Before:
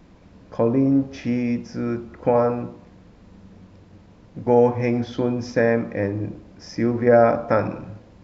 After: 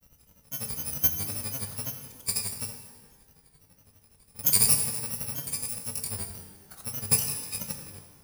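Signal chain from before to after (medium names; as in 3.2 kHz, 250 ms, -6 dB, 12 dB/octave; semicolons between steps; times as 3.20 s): bit-reversed sample order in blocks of 128 samples; treble shelf 4.6 kHz +3.5 dB; level held to a coarse grid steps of 13 dB; granulator, grains 12 per s, pitch spread up and down by 3 st; pitch-shifted reverb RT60 1.2 s, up +12 st, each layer -8 dB, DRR 5.5 dB; trim -3 dB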